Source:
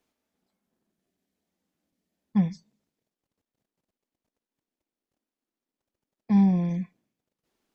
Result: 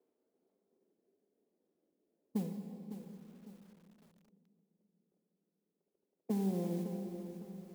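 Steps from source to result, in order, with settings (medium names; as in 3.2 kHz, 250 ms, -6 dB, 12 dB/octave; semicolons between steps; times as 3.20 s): compression 6:1, threshold -27 dBFS, peak gain reduction 10.5 dB; band-pass filter 420 Hz, Q 3.5; modulation noise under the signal 22 dB; on a send at -5 dB: reverberation RT60 3.3 s, pre-delay 37 ms; on the sum: bit-crushed delay 555 ms, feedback 35%, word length 11-bit, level -11 dB; trim +8.5 dB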